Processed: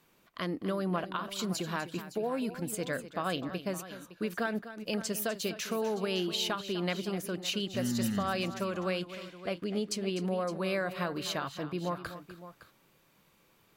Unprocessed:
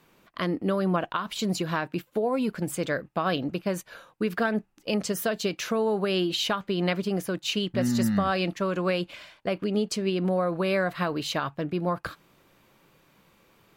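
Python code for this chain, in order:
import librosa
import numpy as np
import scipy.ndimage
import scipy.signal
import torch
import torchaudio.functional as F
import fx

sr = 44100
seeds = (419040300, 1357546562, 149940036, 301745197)

y = fx.high_shelf(x, sr, hz=4200.0, db=6.0)
y = fx.echo_multitap(y, sr, ms=(250, 562), db=(-13.0, -14.5))
y = y * 10.0 ** (-7.0 / 20.0)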